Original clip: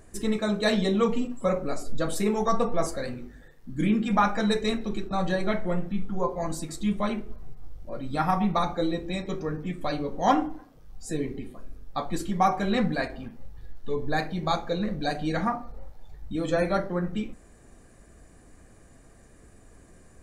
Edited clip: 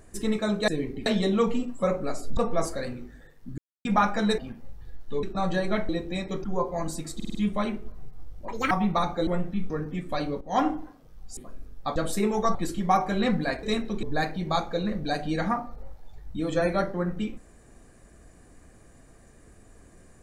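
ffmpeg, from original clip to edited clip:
-filter_complex "[0:a]asplit=24[s0][s1][s2][s3][s4][s5][s6][s7][s8][s9][s10][s11][s12][s13][s14][s15][s16][s17][s18][s19][s20][s21][s22][s23];[s0]atrim=end=0.682[s24];[s1]atrim=start=11.088:end=11.472[s25];[s2]atrim=start=0.678:end=1.992[s26];[s3]atrim=start=2.578:end=3.79,asetpts=PTS-STARTPTS,afade=t=out:st=1.208:d=0.004:c=hsin[s27];[s4]atrim=start=3.79:end=4.06,asetpts=PTS-STARTPTS,volume=0[s28];[s5]atrim=start=4.06:end=4.592,asetpts=PTS-STARTPTS,afade=t=in:d=0.004:c=hsin[s29];[s6]atrim=start=13.138:end=13.992[s30];[s7]atrim=start=4.988:end=5.652[s31];[s8]atrim=start=8.868:end=9.422[s32];[s9]atrim=start=6.078:end=6.842[s33];[s10]atrim=start=6.788:end=6.842[s34];[s11]atrim=start=6.788:end=6.842[s35];[s12]atrim=start=6.788:end=6.842[s36];[s13]atrim=start=6.788:end=7.924[s37];[s14]atrim=start=7.92:end=8.31,asetpts=PTS-STARTPTS,asetrate=74970,aresample=44100,atrim=end_sample=10117,asetpts=PTS-STARTPTS[s38];[s15]atrim=start=8.306:end=8.872[s39];[s16]atrim=start=5.648:end=6.082[s40];[s17]atrim=start=9.418:end=10.13,asetpts=PTS-STARTPTS,afade=t=out:st=0.708:d=0.004:c=hsin:silence=0.16788[s41];[s18]atrim=start=10.13:end=11.092,asetpts=PTS-STARTPTS,afade=t=in:d=0.26:silence=0.16788[s42];[s19]atrim=start=11.468:end=12.062[s43];[s20]atrim=start=1.988:end=2.582[s44];[s21]atrim=start=12.058:end=13.142[s45];[s22]atrim=start=4.588:end=4.992[s46];[s23]atrim=start=13.988[s47];[s24][s25]acrossfade=d=0.004:c1=hsin:c2=hsin[s48];[s48][s26]acrossfade=d=0.004:c1=hsin:c2=hsin[s49];[s27][s28][s29]concat=n=3:v=0:a=1[s50];[s49][s50]acrossfade=d=0.004:c1=hsin:c2=hsin[s51];[s51][s30]acrossfade=d=0.004:c1=hsin:c2=hsin[s52];[s52][s31]acrossfade=d=0.004:c1=hsin:c2=hsin[s53];[s53][s32]acrossfade=d=0.004:c1=hsin:c2=hsin[s54];[s54][s33]acrossfade=d=0.004:c1=hsin:c2=hsin[s55];[s55][s34]acrossfade=d=0.004:c1=hsin:c2=hsin[s56];[s56][s35]acrossfade=d=0.004:c1=hsin:c2=hsin[s57];[s57][s36]acrossfade=d=0.004:c1=hsin:c2=hsin[s58];[s58][s37]acrossfade=d=0.004:c1=hsin:c2=hsin[s59];[s59][s38]acrossfade=d=0.004:c1=hsin:c2=hsin[s60];[s60][s39]acrossfade=d=0.004:c1=hsin:c2=hsin[s61];[s61][s40]acrossfade=d=0.004:c1=hsin:c2=hsin[s62];[s41][s42]concat=n=2:v=0:a=1[s63];[s62][s63]acrossfade=d=0.004:c1=hsin:c2=hsin[s64];[s64][s43]acrossfade=d=0.004:c1=hsin:c2=hsin[s65];[s65][s44]acrossfade=d=0.004:c1=hsin:c2=hsin[s66];[s66][s45]acrossfade=d=0.004:c1=hsin:c2=hsin[s67];[s67][s46]acrossfade=d=0.004:c1=hsin:c2=hsin[s68];[s68][s47]acrossfade=d=0.004:c1=hsin:c2=hsin"

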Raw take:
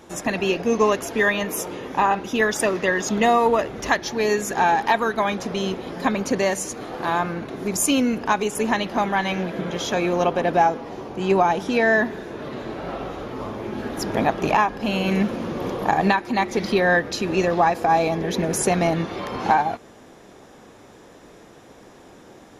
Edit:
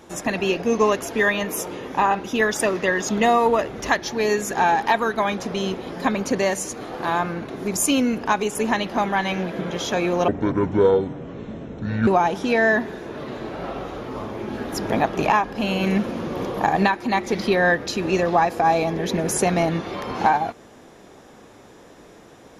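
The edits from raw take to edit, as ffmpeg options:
-filter_complex "[0:a]asplit=3[s0][s1][s2];[s0]atrim=end=10.284[s3];[s1]atrim=start=10.28:end=11.32,asetpts=PTS-STARTPTS,asetrate=25578,aresample=44100[s4];[s2]atrim=start=11.316[s5];[s3][s4]acrossfade=d=0.004:c1=hsin:c2=hsin[s6];[s6][s5]acrossfade=d=0.004:c1=hsin:c2=hsin"

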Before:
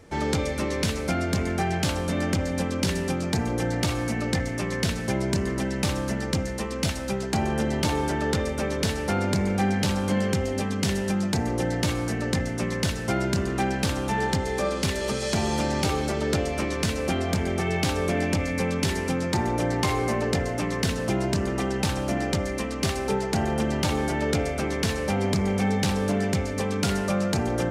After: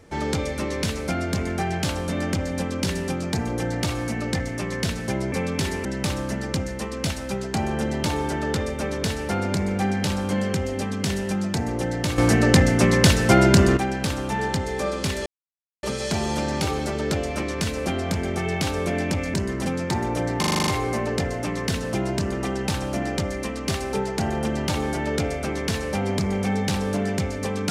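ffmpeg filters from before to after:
-filter_complex "[0:a]asplit=15[s0][s1][s2][s3][s4][s5][s6][s7][s8][s9][s10][s11][s12][s13][s14];[s0]atrim=end=5.322[s15];[s1]atrim=start=18.558:end=19.092[s16];[s2]atrim=start=5.638:end=11.972[s17];[s3]atrim=start=11.968:end=13.562,asetpts=PTS-STARTPTS,volume=3.16[s18];[s4]atrim=start=13.558:end=15.05,asetpts=PTS-STARTPTS,afade=t=out:st=1.488:d=0.004:c=hsin,apad=pad_dur=0.57[s19];[s5]atrim=start=15.05:end=18.562,asetpts=PTS-STARTPTS,afade=t=in:d=0.004:c=hsin[s20];[s6]atrim=start=5.318:end=5.642[s21];[s7]atrim=start=19.088:end=19.862[s22];[s8]atrim=start=19.818:end=19.862[s23];[s9]atrim=start=19.818:end=19.862[s24];[s10]atrim=start=19.818:end=19.862[s25];[s11]atrim=start=19.818:end=19.862[s26];[s12]atrim=start=19.818:end=19.862[s27];[s13]atrim=start=19.818:end=19.862[s28];[s14]atrim=start=19.818[s29];[s15][s16]acrossfade=d=0.004:c1=hsin:c2=hsin[s30];[s30][s17]acrossfade=d=0.004:c1=hsin:c2=hsin[s31];[s31][s18]acrossfade=d=0.004:c1=hsin:c2=hsin[s32];[s19][s20]concat=n=2:v=0:a=1[s33];[s32][s33]acrossfade=d=0.004:c1=hsin:c2=hsin[s34];[s34][s21]acrossfade=d=0.004:c1=hsin:c2=hsin[s35];[s35][s22]acrossfade=d=0.004:c1=hsin:c2=hsin[s36];[s36][s23]acrossfade=d=0.004:c1=hsin:c2=hsin[s37];[s37][s24]acrossfade=d=0.004:c1=hsin:c2=hsin[s38];[s38][s25]acrossfade=d=0.004:c1=hsin:c2=hsin[s39];[s39][s26]acrossfade=d=0.004:c1=hsin:c2=hsin[s40];[s40][s27]acrossfade=d=0.004:c1=hsin:c2=hsin[s41];[s41][s28]acrossfade=d=0.004:c1=hsin:c2=hsin[s42];[s42][s29]acrossfade=d=0.004:c1=hsin:c2=hsin"

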